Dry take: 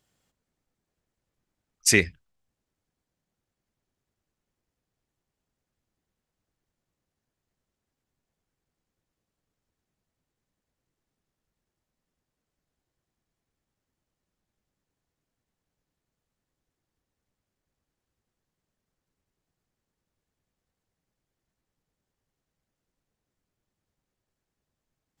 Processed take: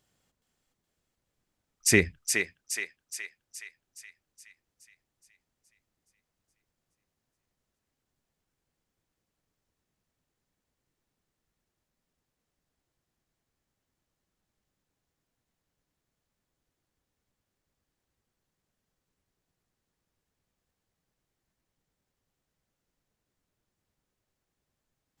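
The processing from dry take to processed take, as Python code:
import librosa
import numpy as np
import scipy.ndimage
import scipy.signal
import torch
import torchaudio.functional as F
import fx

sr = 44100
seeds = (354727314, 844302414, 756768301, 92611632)

y = fx.dynamic_eq(x, sr, hz=4500.0, q=0.75, threshold_db=-34.0, ratio=4.0, max_db=-6)
y = fx.echo_thinned(y, sr, ms=420, feedback_pct=56, hz=790.0, wet_db=-4.0)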